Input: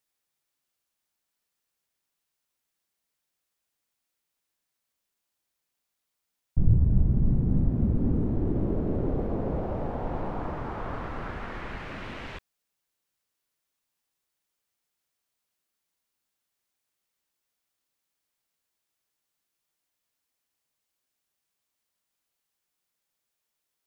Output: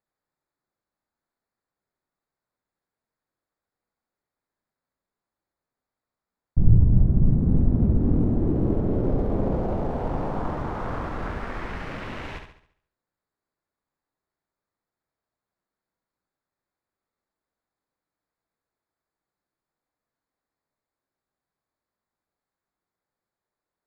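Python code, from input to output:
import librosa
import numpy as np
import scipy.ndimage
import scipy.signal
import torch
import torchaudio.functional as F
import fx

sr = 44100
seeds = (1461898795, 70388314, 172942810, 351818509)

y = fx.wiener(x, sr, points=15)
y = fx.room_flutter(y, sr, wall_m=11.9, rt60_s=0.6)
y = fx.doppler_dist(y, sr, depth_ms=0.39, at=(7.39, 8.25))
y = y * librosa.db_to_amplitude(3.5)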